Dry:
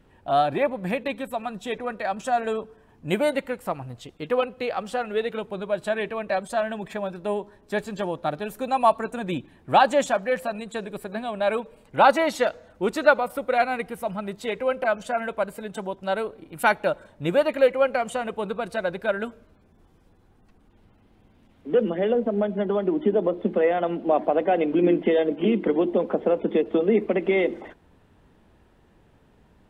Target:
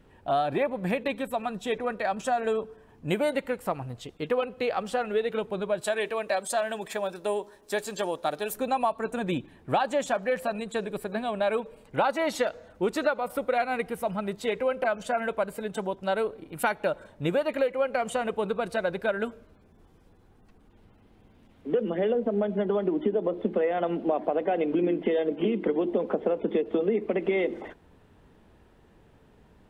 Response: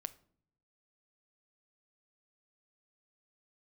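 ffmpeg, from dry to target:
-filter_complex "[0:a]equalizer=frequency=440:width_type=o:width=0.25:gain=3,acompressor=threshold=-22dB:ratio=6,asettb=1/sr,asplit=3[link_01][link_02][link_03];[link_01]atrim=end=5.814[link_04];[link_02]atrim=start=5.81:end=8.54,asetpts=PTS-STARTPTS,afade=type=in:duration=0.004:curve=qsin,afade=type=out:start_time=2.726:duration=0.004:curve=qsin,bass=frequency=250:gain=-11,treble=frequency=4000:gain=10[link_05];[link_03]atrim=start=8.536[link_06];[link_04][link_05]acrossfade=duration=0.004:curve1=hsin:curve2=qsin[link_07];[link_07][link_06]acrossfade=duration=0.004:curve1=qsin:curve2=hsin"

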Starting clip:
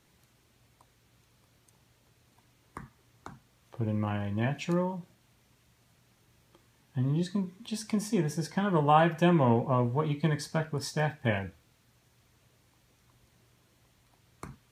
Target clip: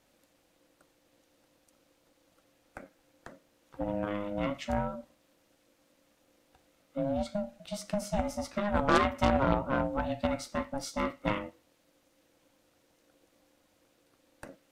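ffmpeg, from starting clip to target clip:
ffmpeg -i in.wav -af "aeval=exprs='val(0)*sin(2*PI*410*n/s)':channel_layout=same,aeval=exprs='0.299*(cos(1*acos(clip(val(0)/0.299,-1,1)))-cos(1*PI/2))+0.075*(cos(6*acos(clip(val(0)/0.299,-1,1)))-cos(6*PI/2))+0.0473*(cos(8*acos(clip(val(0)/0.299,-1,1)))-cos(8*PI/2))':channel_layout=same" out.wav

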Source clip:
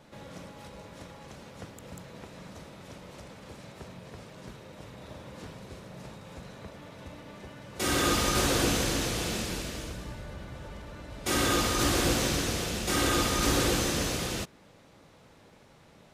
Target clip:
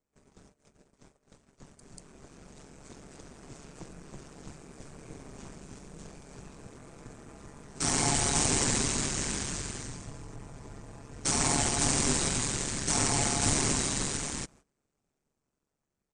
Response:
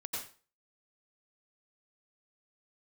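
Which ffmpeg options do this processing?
-af "asetrate=27781,aresample=44100,atempo=1.5874,highshelf=frequency=5400:width_type=q:width=1.5:gain=13,dynaudnorm=framelen=730:gausssize=7:maxgain=10dB,agate=range=-19dB:threshold=-44dB:ratio=16:detection=peak,aeval=exprs='val(0)*sin(2*PI*71*n/s)':channel_layout=same,volume=-8dB"

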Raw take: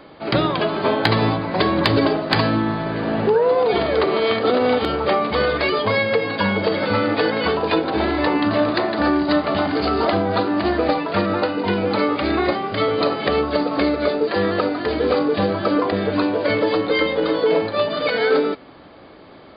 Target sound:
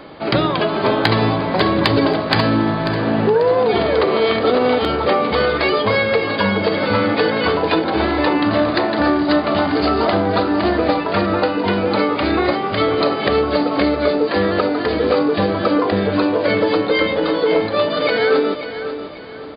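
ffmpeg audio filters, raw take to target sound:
ffmpeg -i in.wav -filter_complex "[0:a]asplit=2[link_01][link_02];[link_02]acompressor=threshold=-25dB:ratio=6,volume=1.5dB[link_03];[link_01][link_03]amix=inputs=2:normalize=0,aecho=1:1:541|1082|1623|2164:0.282|0.104|0.0386|0.0143,volume=-1dB" out.wav

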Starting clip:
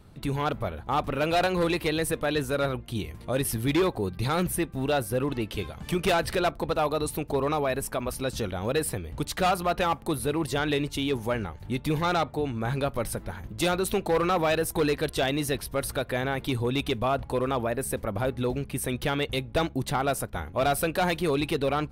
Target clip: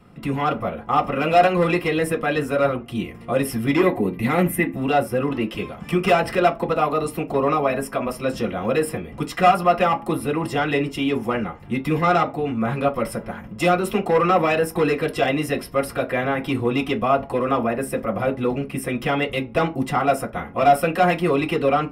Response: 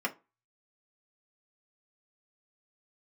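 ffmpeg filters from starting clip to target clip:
-filter_complex "[0:a]asettb=1/sr,asplit=3[link_01][link_02][link_03];[link_01]atrim=end=3.804[link_04];[link_02]atrim=start=3.8:end=4.76,asetpts=PTS-STARTPTS,afade=type=in:duration=0.004:curve=qsin,afade=type=out:start_time=0.956:duration=0.004:curve=qsin,equalizer=frequency=250:width_type=o:width=0.33:gain=11,equalizer=frequency=1250:width_type=o:width=0.33:gain=-6,equalizer=frequency=2000:width_type=o:width=0.33:gain=8,equalizer=frequency=5000:width_type=o:width=0.33:gain=-10,equalizer=frequency=12500:width_type=o:width=0.33:gain=10[link_05];[link_03]atrim=start=4.756[link_06];[link_04][link_05]acrossfade=duration=0.004:curve1=hsin:curve2=qsin[link_07];[link_07][link_06]acrossfade=duration=0.004:curve1=qsin:curve2=hsin[link_08];[1:a]atrim=start_sample=2205[link_09];[link_08][link_09]afir=irnorm=-1:irlink=0"

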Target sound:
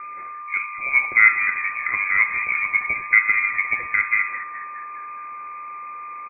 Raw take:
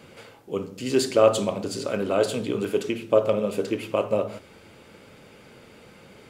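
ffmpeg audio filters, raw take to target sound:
ffmpeg -i in.wav -filter_complex "[0:a]aeval=exprs='val(0)+0.0178*sin(2*PI*1400*n/s)':channel_layout=same,asplit=7[link_01][link_02][link_03][link_04][link_05][link_06][link_07];[link_02]adelay=208,afreqshift=86,volume=-14dB[link_08];[link_03]adelay=416,afreqshift=172,volume=-19.2dB[link_09];[link_04]adelay=624,afreqshift=258,volume=-24.4dB[link_10];[link_05]adelay=832,afreqshift=344,volume=-29.6dB[link_11];[link_06]adelay=1040,afreqshift=430,volume=-34.8dB[link_12];[link_07]adelay=1248,afreqshift=516,volume=-40dB[link_13];[link_01][link_08][link_09][link_10][link_11][link_12][link_13]amix=inputs=7:normalize=0,lowpass=frequency=2200:width_type=q:width=0.5098,lowpass=frequency=2200:width_type=q:width=0.6013,lowpass=frequency=2200:width_type=q:width=0.9,lowpass=frequency=2200:width_type=q:width=2.563,afreqshift=-2600,volume=3dB" out.wav

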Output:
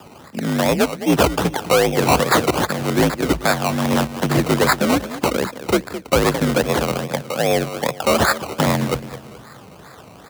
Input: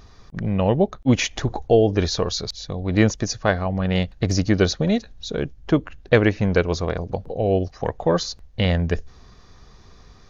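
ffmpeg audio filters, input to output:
ffmpeg -i in.wav -filter_complex "[0:a]highpass=79,asplit=2[link_01][link_02];[link_02]acompressor=threshold=-27dB:ratio=6,volume=-1.5dB[link_03];[link_01][link_03]amix=inputs=2:normalize=0,lowshelf=frequency=250:gain=-4,aecho=1:1:213|426|639|852:0.211|0.0803|0.0305|0.0116,acrossover=split=160|770[link_04][link_05][link_06];[link_06]crystalizer=i=5:c=0[link_07];[link_04][link_05][link_07]amix=inputs=3:normalize=0,aresample=11025,aresample=44100,acrusher=samples=21:mix=1:aa=0.000001:lfo=1:lforange=12.6:lforate=2.5,volume=11dB,asoftclip=hard,volume=-11dB,afreqshift=50,volume=2dB" out.wav

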